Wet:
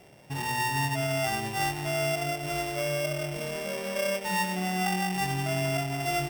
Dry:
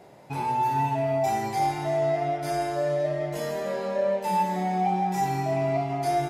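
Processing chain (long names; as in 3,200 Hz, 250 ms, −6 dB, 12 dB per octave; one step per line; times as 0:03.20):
samples sorted by size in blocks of 16 samples
low-shelf EQ 120 Hz +10.5 dB
level −4.5 dB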